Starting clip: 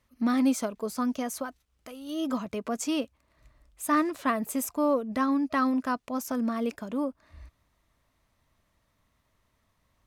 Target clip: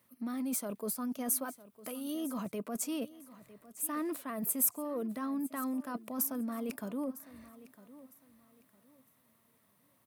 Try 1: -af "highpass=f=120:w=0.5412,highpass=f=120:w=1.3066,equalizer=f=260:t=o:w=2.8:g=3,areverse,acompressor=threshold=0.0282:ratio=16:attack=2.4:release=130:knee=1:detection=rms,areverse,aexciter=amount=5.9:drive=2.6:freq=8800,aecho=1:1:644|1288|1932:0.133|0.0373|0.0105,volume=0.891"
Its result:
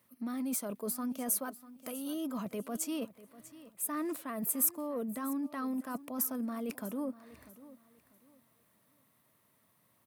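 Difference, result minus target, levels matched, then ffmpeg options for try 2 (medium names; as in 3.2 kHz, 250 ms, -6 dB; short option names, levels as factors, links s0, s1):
echo 311 ms early
-af "highpass=f=120:w=0.5412,highpass=f=120:w=1.3066,equalizer=f=260:t=o:w=2.8:g=3,areverse,acompressor=threshold=0.0282:ratio=16:attack=2.4:release=130:knee=1:detection=rms,areverse,aexciter=amount=5.9:drive=2.6:freq=8800,aecho=1:1:955|1910|2865:0.133|0.0373|0.0105,volume=0.891"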